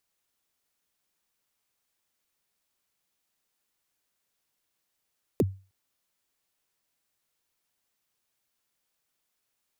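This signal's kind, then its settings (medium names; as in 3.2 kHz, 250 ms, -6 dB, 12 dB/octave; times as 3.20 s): kick drum length 0.31 s, from 510 Hz, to 96 Hz, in 36 ms, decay 0.33 s, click on, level -16 dB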